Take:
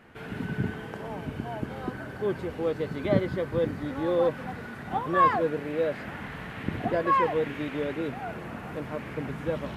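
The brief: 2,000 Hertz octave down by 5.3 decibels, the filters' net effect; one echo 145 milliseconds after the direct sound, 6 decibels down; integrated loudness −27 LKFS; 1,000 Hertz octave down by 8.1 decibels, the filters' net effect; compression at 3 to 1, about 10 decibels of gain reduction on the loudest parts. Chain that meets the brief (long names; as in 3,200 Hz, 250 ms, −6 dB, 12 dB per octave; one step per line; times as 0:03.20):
parametric band 1,000 Hz −8.5 dB
parametric band 2,000 Hz −3.5 dB
downward compressor 3 to 1, threshold −33 dBFS
single-tap delay 145 ms −6 dB
level +9.5 dB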